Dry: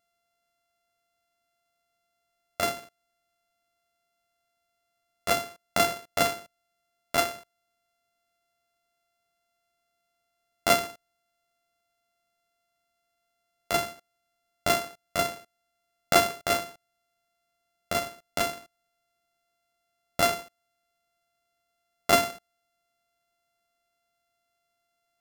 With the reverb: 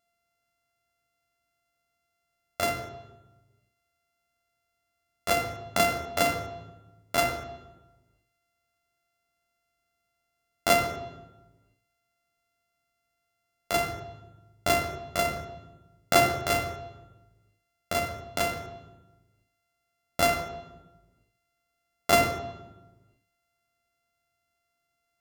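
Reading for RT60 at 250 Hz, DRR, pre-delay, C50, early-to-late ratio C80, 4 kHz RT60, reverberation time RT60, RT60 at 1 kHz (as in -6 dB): 1.5 s, 5.5 dB, 20 ms, 7.0 dB, 9.0 dB, 0.80 s, 1.1 s, 1.0 s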